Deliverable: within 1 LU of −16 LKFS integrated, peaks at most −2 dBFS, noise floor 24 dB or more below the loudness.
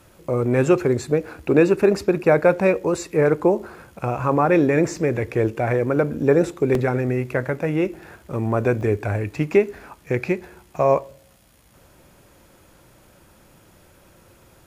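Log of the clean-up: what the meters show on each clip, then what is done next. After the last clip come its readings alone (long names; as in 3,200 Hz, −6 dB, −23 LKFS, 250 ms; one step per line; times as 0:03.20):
number of dropouts 5; longest dropout 2.0 ms; integrated loudness −21.0 LKFS; sample peak −3.0 dBFS; target loudness −16.0 LKFS
→ repair the gap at 0:01.28/0:04.96/0:06.75/0:08.81/0:09.79, 2 ms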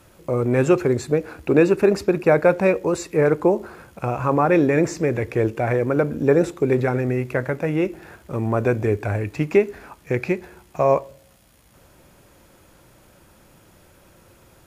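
number of dropouts 0; integrated loudness −21.0 LKFS; sample peak −3.0 dBFS; target loudness −16.0 LKFS
→ level +5 dB
brickwall limiter −2 dBFS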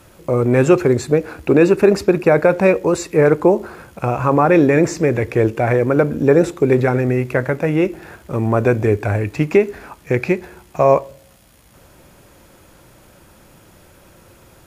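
integrated loudness −16.0 LKFS; sample peak −2.0 dBFS; background noise floor −49 dBFS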